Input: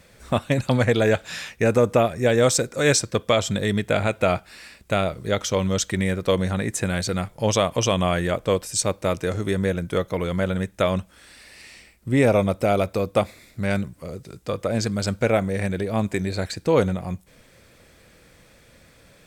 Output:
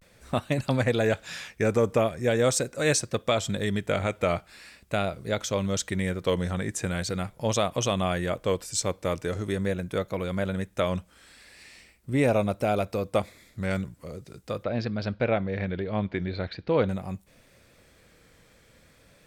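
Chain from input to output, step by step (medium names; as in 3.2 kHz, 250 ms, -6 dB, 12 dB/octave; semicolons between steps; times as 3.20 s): 14.63–16.88 s: steep low-pass 4.4 kHz 36 dB/octave; vibrato 0.42 Hz 70 cents; trim -5 dB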